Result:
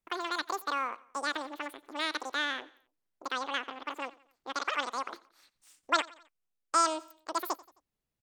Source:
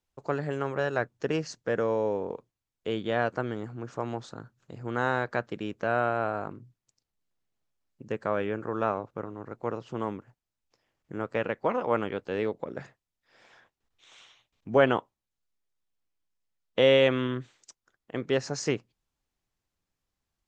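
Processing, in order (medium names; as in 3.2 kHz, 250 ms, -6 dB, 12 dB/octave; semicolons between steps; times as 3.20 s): feedback delay 219 ms, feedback 47%, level -21.5 dB; wide varispeed 2.49×; trim -4.5 dB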